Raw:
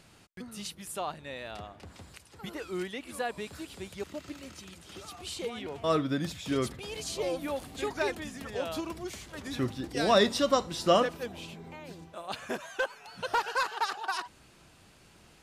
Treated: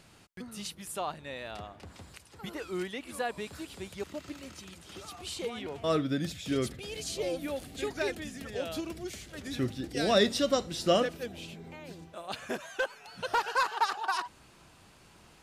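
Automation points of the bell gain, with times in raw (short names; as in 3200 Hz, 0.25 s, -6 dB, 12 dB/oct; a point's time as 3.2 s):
bell 1000 Hz 0.65 oct
5.65 s +0.5 dB
6.11 s -10 dB
11.39 s -10 dB
11.86 s -3 dB
13.15 s -3 dB
13.7 s +4 dB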